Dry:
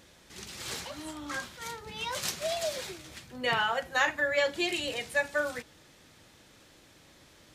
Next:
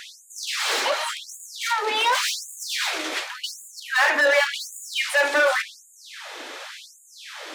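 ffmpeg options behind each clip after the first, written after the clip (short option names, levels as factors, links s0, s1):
-filter_complex "[0:a]asplit=2[s0][s1];[s1]highpass=f=720:p=1,volume=31.6,asoftclip=type=tanh:threshold=0.224[s2];[s0][s2]amix=inputs=2:normalize=0,lowpass=f=2000:p=1,volume=0.501,bandreject=f=99.29:t=h:w=4,bandreject=f=198.58:t=h:w=4,bandreject=f=297.87:t=h:w=4,bandreject=f=397.16:t=h:w=4,bandreject=f=496.45:t=h:w=4,bandreject=f=595.74:t=h:w=4,bandreject=f=695.03:t=h:w=4,bandreject=f=794.32:t=h:w=4,bandreject=f=893.61:t=h:w=4,bandreject=f=992.9:t=h:w=4,bandreject=f=1092.19:t=h:w=4,bandreject=f=1191.48:t=h:w=4,bandreject=f=1290.77:t=h:w=4,bandreject=f=1390.06:t=h:w=4,bandreject=f=1489.35:t=h:w=4,bandreject=f=1588.64:t=h:w=4,bandreject=f=1687.93:t=h:w=4,bandreject=f=1787.22:t=h:w=4,bandreject=f=1886.51:t=h:w=4,bandreject=f=1985.8:t=h:w=4,bandreject=f=2085.09:t=h:w=4,bandreject=f=2184.38:t=h:w=4,bandreject=f=2283.67:t=h:w=4,bandreject=f=2382.96:t=h:w=4,bandreject=f=2482.25:t=h:w=4,bandreject=f=2581.54:t=h:w=4,bandreject=f=2680.83:t=h:w=4,bandreject=f=2780.12:t=h:w=4,bandreject=f=2879.41:t=h:w=4,bandreject=f=2978.7:t=h:w=4,afftfilt=real='re*gte(b*sr/1024,240*pow(6700/240,0.5+0.5*sin(2*PI*0.89*pts/sr)))':imag='im*gte(b*sr/1024,240*pow(6700/240,0.5+0.5*sin(2*PI*0.89*pts/sr)))':win_size=1024:overlap=0.75,volume=1.5"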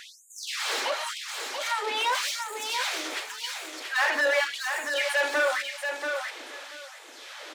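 -af "aecho=1:1:684|1368|2052:0.501|0.0952|0.0181,volume=0.531"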